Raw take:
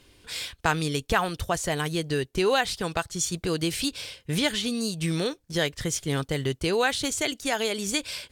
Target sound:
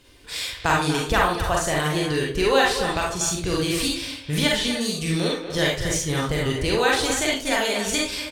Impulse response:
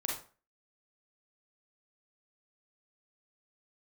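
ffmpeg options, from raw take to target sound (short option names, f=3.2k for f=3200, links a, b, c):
-filter_complex "[0:a]asubboost=boost=2.5:cutoff=120,asplit=2[a][b];[b]adelay=240,highpass=300,lowpass=3.4k,asoftclip=type=hard:threshold=-18.5dB,volume=-8dB[c];[a][c]amix=inputs=2:normalize=0[d];[1:a]atrim=start_sample=2205[e];[d][e]afir=irnorm=-1:irlink=0,volume=2dB"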